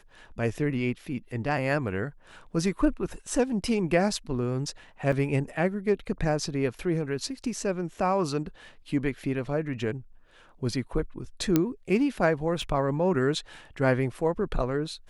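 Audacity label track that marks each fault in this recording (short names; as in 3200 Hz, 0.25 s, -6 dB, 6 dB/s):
5.120000	5.120000	gap 4.7 ms
11.560000	11.560000	pop -8 dBFS
12.620000	12.620000	gap 2.4 ms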